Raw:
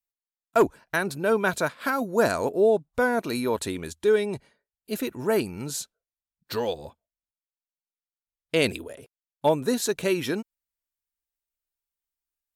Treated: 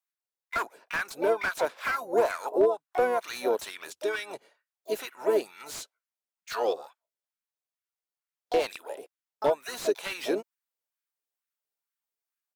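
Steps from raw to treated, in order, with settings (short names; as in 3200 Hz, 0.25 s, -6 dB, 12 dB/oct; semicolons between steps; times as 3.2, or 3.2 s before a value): dynamic EQ 1400 Hz, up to -3 dB, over -36 dBFS, Q 0.95; LFO high-pass sine 2.2 Hz 390–1500 Hz; compressor 2:1, threshold -22 dBFS, peak gain reduction 7.5 dB; harmoniser -5 st -16 dB, +7 st -8 dB; slew limiter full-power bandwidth 120 Hz; gain -2.5 dB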